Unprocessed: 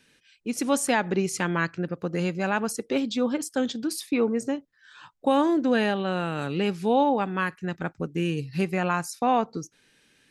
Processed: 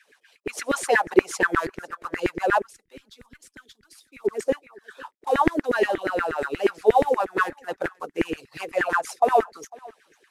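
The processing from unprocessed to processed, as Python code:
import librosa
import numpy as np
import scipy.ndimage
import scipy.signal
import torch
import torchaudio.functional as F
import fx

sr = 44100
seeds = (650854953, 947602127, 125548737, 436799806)

p1 = fx.cvsd(x, sr, bps=64000)
p2 = fx.filter_lfo_highpass(p1, sr, shape='saw_down', hz=8.4, low_hz=330.0, high_hz=2000.0, q=6.1)
p3 = fx.low_shelf(p2, sr, hz=120.0, db=8.5)
p4 = p3 + fx.echo_single(p3, sr, ms=501, db=-23.5, dry=0)
p5 = fx.hpss(p4, sr, part='harmonic', gain_db=-14)
y = fx.tone_stack(p5, sr, knobs='6-0-2', at=(2.61, 4.24), fade=0.02)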